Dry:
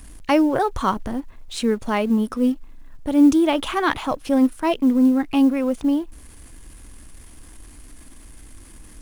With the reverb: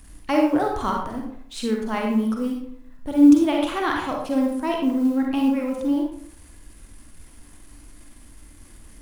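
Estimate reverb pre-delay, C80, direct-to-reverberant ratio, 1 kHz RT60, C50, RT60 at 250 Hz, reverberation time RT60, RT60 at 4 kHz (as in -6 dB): 39 ms, 6.5 dB, 0.0 dB, 0.60 s, 2.0 dB, 0.60 s, 0.60 s, 0.40 s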